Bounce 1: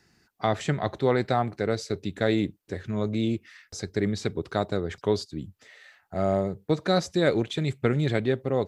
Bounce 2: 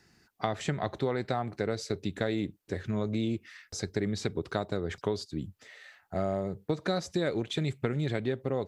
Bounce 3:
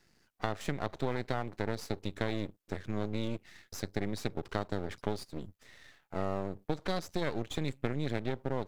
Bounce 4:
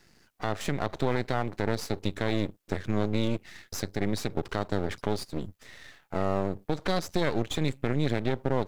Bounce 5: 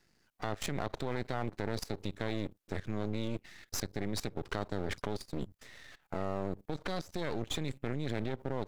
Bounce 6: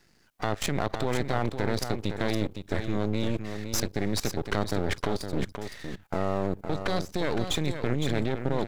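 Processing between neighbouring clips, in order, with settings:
compression, threshold -26 dBFS, peak gain reduction 9.5 dB
half-wave rectifier; trim -1 dB
peak limiter -21 dBFS, peak gain reduction 8.5 dB; trim +7.5 dB
level held to a coarse grid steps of 18 dB; trim +1.5 dB
delay 512 ms -8 dB; trim +7.5 dB

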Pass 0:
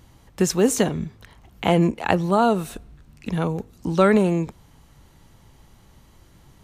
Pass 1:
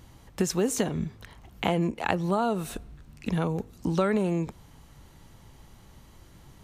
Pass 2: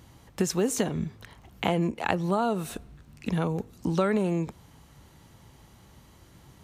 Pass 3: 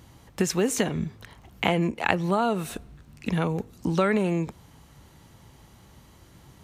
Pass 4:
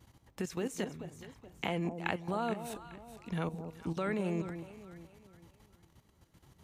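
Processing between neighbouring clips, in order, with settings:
compression 3:1, threshold -24 dBFS, peak gain reduction 9.5 dB
high-pass 58 Hz
dynamic bell 2.2 kHz, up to +6 dB, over -46 dBFS, Q 1.3; trim +1.5 dB
level held to a coarse grid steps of 13 dB; echo whose repeats swap between lows and highs 212 ms, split 880 Hz, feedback 59%, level -8 dB; trim -7.5 dB

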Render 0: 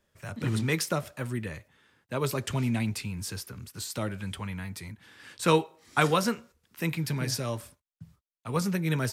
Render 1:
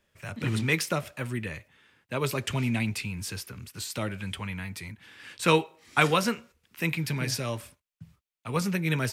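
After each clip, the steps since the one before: de-esser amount 45%; peaking EQ 2.5 kHz +6.5 dB 0.87 oct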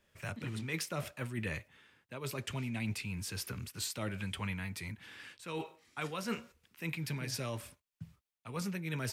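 reverse; compression 16:1, threshold -33 dBFS, peak gain reduction 18 dB; reverse; random flutter of the level, depth 55%; trim +1.5 dB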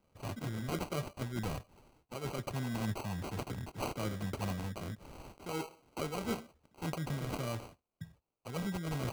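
sample-and-hold 25×; trim +1 dB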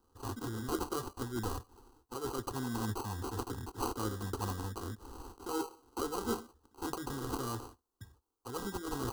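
static phaser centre 610 Hz, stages 6; trim +5 dB

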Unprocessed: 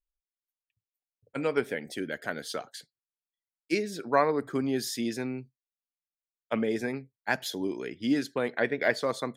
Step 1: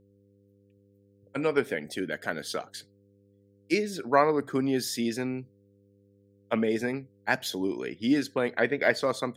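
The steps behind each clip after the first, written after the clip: de-esser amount 55%; mains buzz 100 Hz, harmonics 5, -64 dBFS -2 dB/octave; trim +2 dB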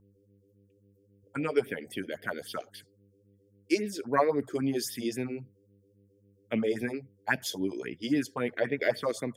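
band-stop 4 kHz, Q 5.8; phase shifter stages 4, 3.7 Hz, lowest notch 140–1300 Hz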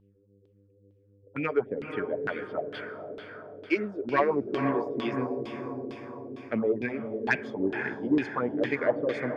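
echo that smears into a reverb 488 ms, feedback 58%, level -7 dB; LFO low-pass saw down 2.2 Hz 370–3500 Hz; saturation -11.5 dBFS, distortion -24 dB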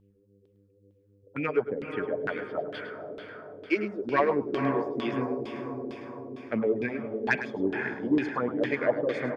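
delay 105 ms -12 dB

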